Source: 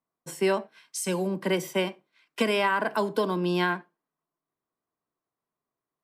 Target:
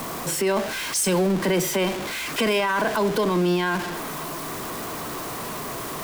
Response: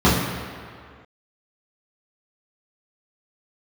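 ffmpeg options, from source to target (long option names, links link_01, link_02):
-af "aeval=exprs='val(0)+0.5*0.0316*sgn(val(0))':channel_layout=same,alimiter=limit=-20.5dB:level=0:latency=1:release=18,volume=6dB"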